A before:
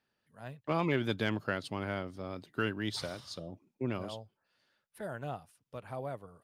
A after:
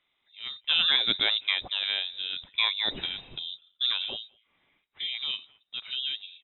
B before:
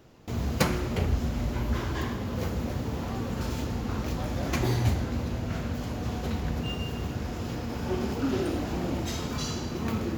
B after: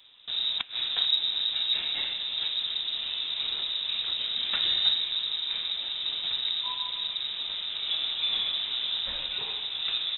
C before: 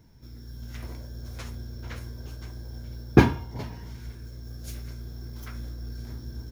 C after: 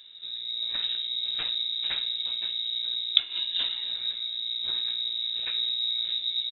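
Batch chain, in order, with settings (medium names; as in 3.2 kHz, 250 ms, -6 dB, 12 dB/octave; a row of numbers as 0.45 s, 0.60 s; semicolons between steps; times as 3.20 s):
inverted gate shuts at -12 dBFS, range -24 dB; speakerphone echo 210 ms, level -28 dB; frequency inversion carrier 3.8 kHz; normalise loudness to -27 LUFS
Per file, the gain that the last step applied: +6.5 dB, -1.0 dB, +6.0 dB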